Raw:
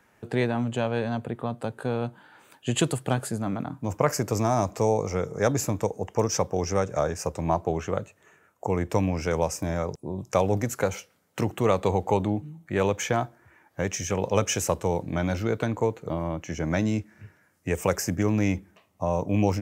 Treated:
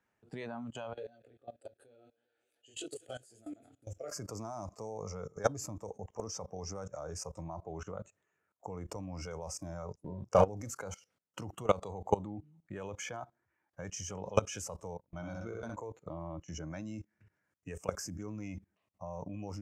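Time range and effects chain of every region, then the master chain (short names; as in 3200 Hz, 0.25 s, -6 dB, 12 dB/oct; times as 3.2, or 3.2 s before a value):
0.93–4.11 fixed phaser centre 420 Hz, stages 4 + thinning echo 0.19 s, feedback 63%, level -18 dB + detuned doubles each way 18 cents
10.04–10.48 high shelf 3200 Hz -8 dB + sample leveller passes 1 + doubler 34 ms -6 dB
14.97–15.75 gate -28 dBFS, range -28 dB + flutter echo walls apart 10.9 m, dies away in 0.73 s
whole clip: spectral noise reduction 11 dB; LPF 9300 Hz 12 dB/oct; level quantiser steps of 20 dB; gain -1.5 dB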